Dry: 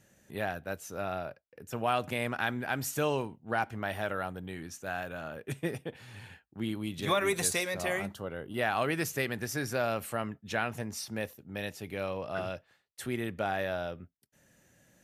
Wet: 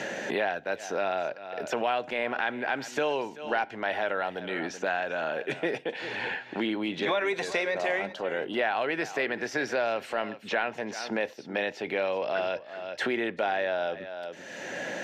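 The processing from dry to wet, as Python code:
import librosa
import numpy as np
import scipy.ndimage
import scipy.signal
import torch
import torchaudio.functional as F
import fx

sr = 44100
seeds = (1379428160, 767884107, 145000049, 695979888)

p1 = scipy.signal.sosfilt(scipy.signal.butter(2, 430.0, 'highpass', fs=sr, output='sos'), x)
p2 = fx.peak_eq(p1, sr, hz=1200.0, db=-11.5, octaves=0.21)
p3 = fx.transient(p2, sr, attack_db=-5, sustain_db=2)
p4 = fx.air_absorb(p3, sr, metres=190.0)
p5 = p4 + fx.echo_single(p4, sr, ms=383, db=-18.5, dry=0)
p6 = fx.band_squash(p5, sr, depth_pct=100)
y = F.gain(torch.from_numpy(p6), 8.0).numpy()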